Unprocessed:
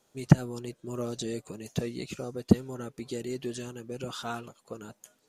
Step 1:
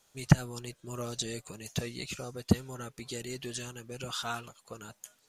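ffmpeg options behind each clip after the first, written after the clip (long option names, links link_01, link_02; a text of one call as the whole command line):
ffmpeg -i in.wav -af "equalizer=frequency=310:width_type=o:width=2.7:gain=-11.5,volume=4.5dB" out.wav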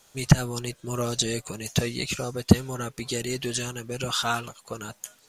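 ffmpeg -i in.wav -af "alimiter=level_in=10.5dB:limit=-1dB:release=50:level=0:latency=1,volume=-1dB" out.wav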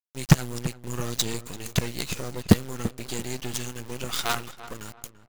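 ffmpeg -i in.wav -filter_complex "[0:a]acrusher=bits=4:dc=4:mix=0:aa=0.000001,asplit=2[link_01][link_02];[link_02]adelay=339,lowpass=frequency=1900:poles=1,volume=-14dB,asplit=2[link_03][link_04];[link_04]adelay=339,lowpass=frequency=1900:poles=1,volume=0.33,asplit=2[link_05][link_06];[link_06]adelay=339,lowpass=frequency=1900:poles=1,volume=0.33[link_07];[link_01][link_03][link_05][link_07]amix=inputs=4:normalize=0" out.wav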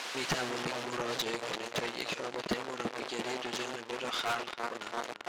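ffmpeg -i in.wav -af "aeval=exprs='val(0)+0.5*0.1*sgn(val(0))':channel_layout=same,highpass=390,lowpass=4000,asoftclip=type=tanh:threshold=-25dB" out.wav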